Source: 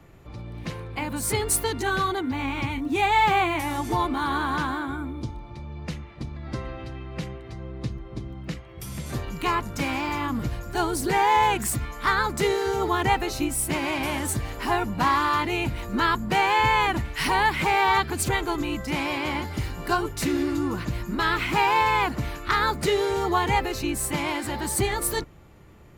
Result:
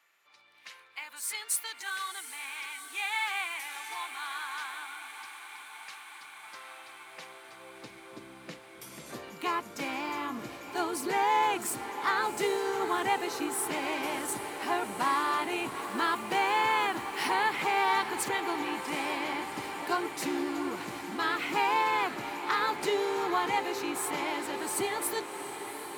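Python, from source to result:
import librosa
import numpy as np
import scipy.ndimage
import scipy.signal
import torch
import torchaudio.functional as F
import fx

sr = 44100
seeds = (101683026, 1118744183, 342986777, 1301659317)

y = fx.filter_sweep_highpass(x, sr, from_hz=1600.0, to_hz=320.0, start_s=6.16, end_s=8.31, q=0.89)
y = fx.quant_dither(y, sr, seeds[0], bits=8, dither='none', at=(15.81, 17.23))
y = fx.echo_diffused(y, sr, ms=743, feedback_pct=76, wet_db=-11)
y = F.gain(torch.from_numpy(y), -6.5).numpy()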